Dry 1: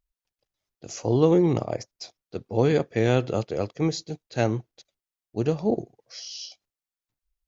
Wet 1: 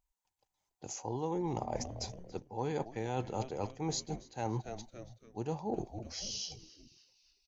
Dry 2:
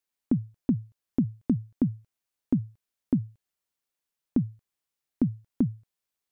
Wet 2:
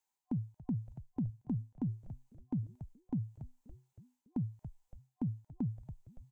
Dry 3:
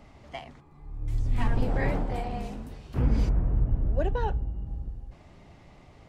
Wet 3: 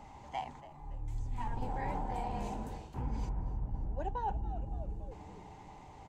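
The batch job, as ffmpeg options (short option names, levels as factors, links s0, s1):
-filter_complex "[0:a]superequalizer=9b=3.98:15b=2,asplit=5[s0][s1][s2][s3][s4];[s1]adelay=283,afreqshift=-120,volume=0.106[s5];[s2]adelay=566,afreqshift=-240,volume=0.0569[s6];[s3]adelay=849,afreqshift=-360,volume=0.0309[s7];[s4]adelay=1132,afreqshift=-480,volume=0.0166[s8];[s0][s5][s6][s7][s8]amix=inputs=5:normalize=0,areverse,acompressor=threshold=0.0282:ratio=5,areverse,volume=0.75" -ar 44100 -c:a aac -b:a 192k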